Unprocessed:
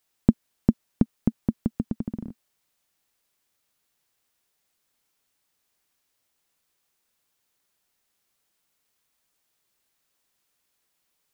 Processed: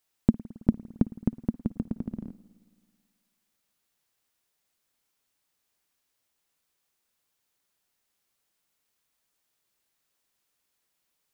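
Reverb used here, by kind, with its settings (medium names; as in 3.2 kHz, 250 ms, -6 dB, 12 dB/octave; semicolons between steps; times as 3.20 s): spring tank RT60 1.8 s, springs 54 ms, chirp 45 ms, DRR 17 dB; trim -3 dB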